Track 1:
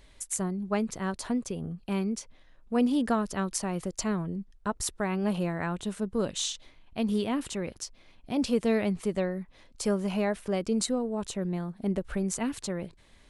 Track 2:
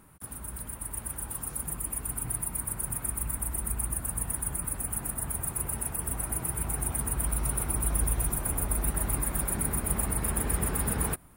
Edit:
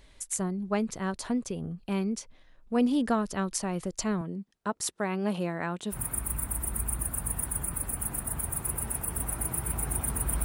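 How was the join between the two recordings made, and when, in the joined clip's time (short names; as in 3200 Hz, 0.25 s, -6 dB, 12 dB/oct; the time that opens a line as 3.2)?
track 1
4.21–5.96 HPF 170 Hz 12 dB/oct
5.93 switch to track 2 from 2.84 s, crossfade 0.06 s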